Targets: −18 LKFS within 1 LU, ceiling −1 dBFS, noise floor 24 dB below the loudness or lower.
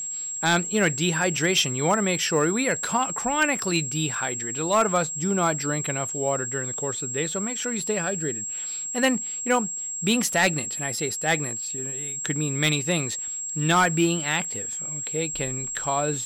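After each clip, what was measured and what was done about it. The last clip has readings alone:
share of clipped samples 0.2%; peaks flattened at −13.0 dBFS; interfering tone 7,600 Hz; level of the tone −29 dBFS; integrated loudness −24.0 LKFS; sample peak −13.0 dBFS; target loudness −18.0 LKFS
→ clipped peaks rebuilt −13 dBFS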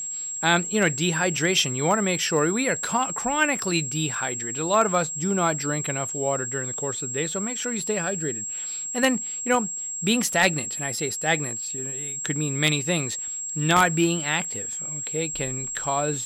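share of clipped samples 0.0%; interfering tone 7,600 Hz; level of the tone −29 dBFS
→ notch filter 7,600 Hz, Q 30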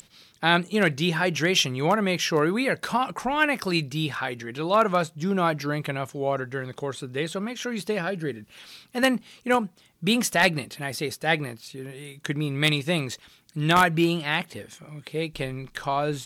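interfering tone none found; integrated loudness −25.0 LKFS; sample peak −3.5 dBFS; target loudness −18.0 LKFS
→ level +7 dB
brickwall limiter −1 dBFS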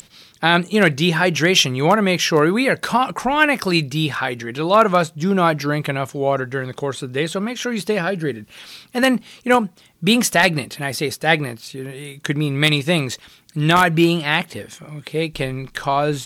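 integrated loudness −18.5 LKFS; sample peak −1.0 dBFS; background noise floor −50 dBFS

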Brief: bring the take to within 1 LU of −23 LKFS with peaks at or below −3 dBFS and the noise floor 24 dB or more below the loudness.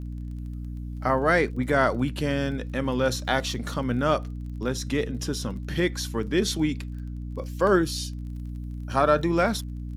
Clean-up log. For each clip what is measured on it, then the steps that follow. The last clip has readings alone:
crackle rate 27 per second; mains hum 60 Hz; hum harmonics up to 300 Hz; level of the hum −31 dBFS; integrated loudness −26.0 LKFS; sample peak −7.5 dBFS; target loudness −23.0 LKFS
→ click removal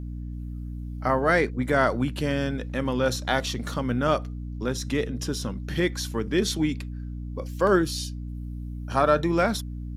crackle rate 0.10 per second; mains hum 60 Hz; hum harmonics up to 300 Hz; level of the hum −31 dBFS
→ hum removal 60 Hz, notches 5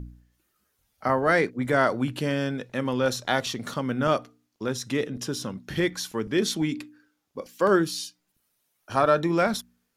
mains hum none found; integrated loudness −26.0 LKFS; sample peak −8.0 dBFS; target loudness −23.0 LKFS
→ level +3 dB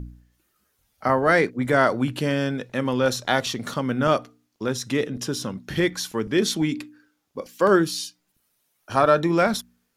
integrated loudness −23.0 LKFS; sample peak −5.0 dBFS; background noise floor −72 dBFS

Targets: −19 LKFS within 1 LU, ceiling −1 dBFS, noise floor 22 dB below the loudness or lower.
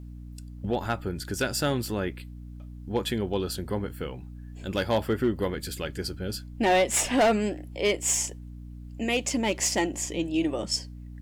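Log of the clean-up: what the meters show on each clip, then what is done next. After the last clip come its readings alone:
share of clipped samples 0.6%; peaks flattened at −17.0 dBFS; mains hum 60 Hz; hum harmonics up to 300 Hz; level of the hum −39 dBFS; integrated loudness −27.5 LKFS; sample peak −17.0 dBFS; target loudness −19.0 LKFS
→ clipped peaks rebuilt −17 dBFS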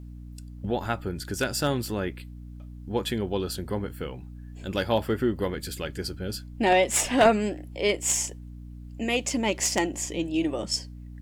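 share of clipped samples 0.0%; mains hum 60 Hz; hum harmonics up to 300 Hz; level of the hum −39 dBFS
→ mains-hum notches 60/120/180/240/300 Hz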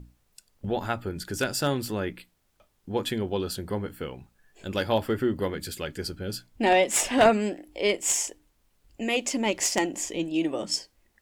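mains hum none found; integrated loudness −27.0 LKFS; sample peak −8.0 dBFS; target loudness −19.0 LKFS
→ level +8 dB
brickwall limiter −1 dBFS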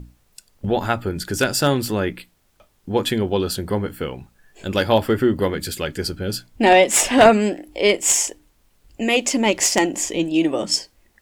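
integrated loudness −19.5 LKFS; sample peak −1.0 dBFS; background noise floor −62 dBFS

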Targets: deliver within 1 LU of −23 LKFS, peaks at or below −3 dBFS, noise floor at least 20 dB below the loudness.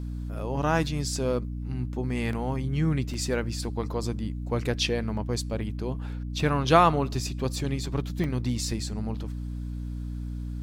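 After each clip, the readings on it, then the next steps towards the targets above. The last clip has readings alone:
number of dropouts 4; longest dropout 2.0 ms; mains hum 60 Hz; hum harmonics up to 300 Hz; level of the hum −31 dBFS; integrated loudness −28.5 LKFS; sample peak −5.5 dBFS; target loudness −23.0 LKFS
→ repair the gap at 0:01.16/0:02.33/0:03.14/0:08.24, 2 ms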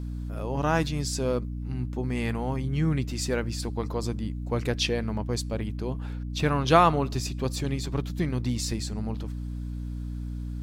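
number of dropouts 0; mains hum 60 Hz; hum harmonics up to 300 Hz; level of the hum −31 dBFS
→ hum removal 60 Hz, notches 5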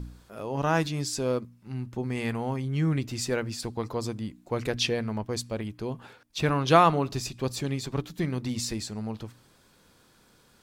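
mains hum none found; integrated loudness −29.0 LKFS; sample peak −5.5 dBFS; target loudness −23.0 LKFS
→ level +6 dB
brickwall limiter −3 dBFS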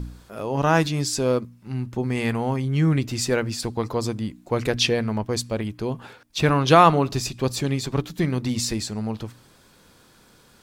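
integrated loudness −23.0 LKFS; sample peak −3.0 dBFS; background noise floor −55 dBFS

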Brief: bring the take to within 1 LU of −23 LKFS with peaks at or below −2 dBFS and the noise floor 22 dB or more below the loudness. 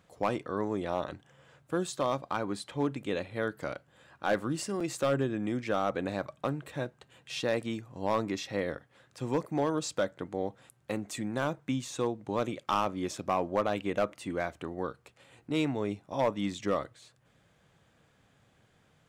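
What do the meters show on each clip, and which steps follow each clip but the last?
share of clipped samples 0.2%; peaks flattened at −19.0 dBFS; number of dropouts 1; longest dropout 4.7 ms; integrated loudness −33.0 LKFS; sample peak −19.0 dBFS; target loudness −23.0 LKFS
→ clipped peaks rebuilt −19 dBFS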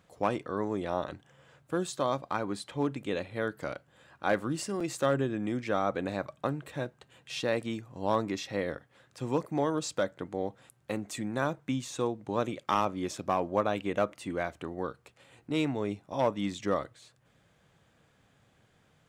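share of clipped samples 0.0%; number of dropouts 1; longest dropout 4.7 ms
→ repair the gap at 0:04.80, 4.7 ms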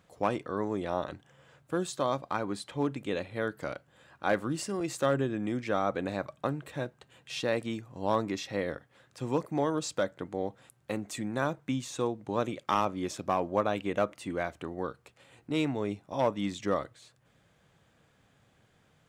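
number of dropouts 0; integrated loudness −33.0 LKFS; sample peak −12.5 dBFS; target loudness −23.0 LKFS
→ level +10 dB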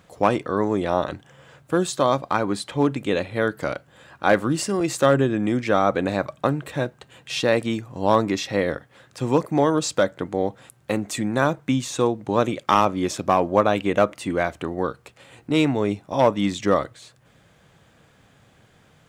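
integrated loudness −23.0 LKFS; sample peak −2.5 dBFS; background noise floor −57 dBFS

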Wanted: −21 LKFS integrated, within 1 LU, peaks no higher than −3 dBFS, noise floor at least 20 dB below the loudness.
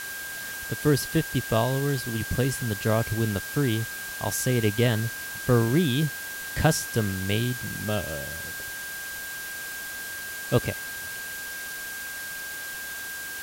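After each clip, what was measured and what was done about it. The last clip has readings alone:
interfering tone 1,600 Hz; level of the tone −35 dBFS; background noise floor −36 dBFS; target noise floor −48 dBFS; integrated loudness −27.5 LKFS; sample peak −6.0 dBFS; target loudness −21.0 LKFS
→ notch filter 1,600 Hz, Q 30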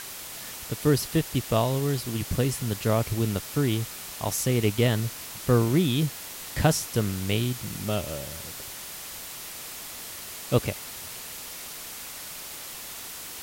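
interfering tone none found; background noise floor −40 dBFS; target noise floor −48 dBFS
→ broadband denoise 8 dB, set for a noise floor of −40 dBFS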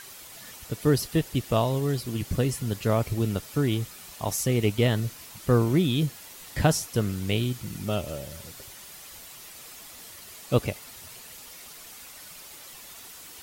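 background noise floor −46 dBFS; target noise floor −47 dBFS
→ broadband denoise 6 dB, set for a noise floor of −46 dBFS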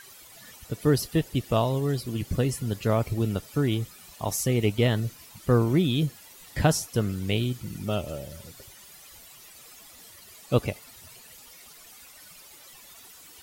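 background noise floor −50 dBFS; integrated loudness −27.0 LKFS; sample peak −6.5 dBFS; target loudness −21.0 LKFS
→ level +6 dB
brickwall limiter −3 dBFS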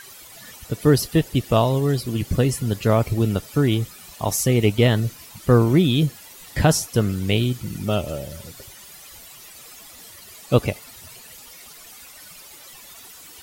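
integrated loudness −21.0 LKFS; sample peak −3.0 dBFS; background noise floor −44 dBFS

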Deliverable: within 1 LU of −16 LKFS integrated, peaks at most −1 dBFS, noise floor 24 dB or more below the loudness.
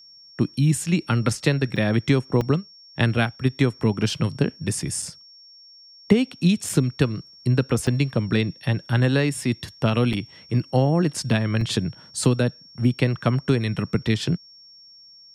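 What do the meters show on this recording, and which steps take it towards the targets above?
number of dropouts 7; longest dropout 3.6 ms; interfering tone 5,500 Hz; level of the tone −46 dBFS; integrated loudness −23.0 LKFS; sample peak −3.5 dBFS; target loudness −16.0 LKFS
→ repair the gap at 0:01.76/0:02.41/0:05.02/0:06.69/0:07.87/0:10.13/0:11.61, 3.6 ms
notch filter 5,500 Hz, Q 30
level +7 dB
brickwall limiter −1 dBFS

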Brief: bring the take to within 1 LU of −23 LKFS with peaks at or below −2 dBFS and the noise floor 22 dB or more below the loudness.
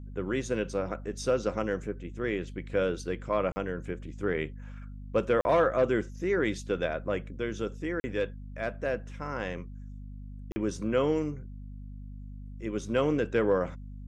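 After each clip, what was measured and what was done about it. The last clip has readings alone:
number of dropouts 4; longest dropout 40 ms; mains hum 50 Hz; hum harmonics up to 250 Hz; level of the hum −40 dBFS; integrated loudness −31.0 LKFS; sample peak −14.0 dBFS; target loudness −23.0 LKFS
→ repair the gap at 0:03.52/0:05.41/0:08.00/0:10.52, 40 ms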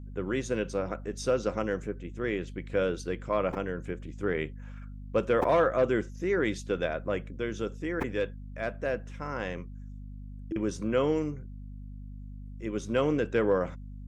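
number of dropouts 0; mains hum 50 Hz; hum harmonics up to 250 Hz; level of the hum −40 dBFS
→ hum removal 50 Hz, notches 5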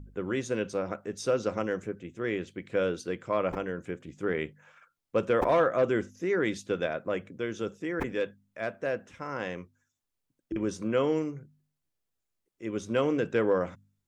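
mains hum none found; integrated loudness −31.0 LKFS; sample peak −14.0 dBFS; target loudness −23.0 LKFS
→ level +8 dB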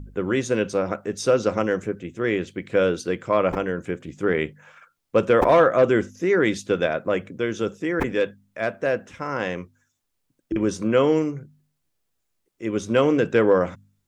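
integrated loudness −23.0 LKFS; sample peak −6.0 dBFS; background noise floor −75 dBFS

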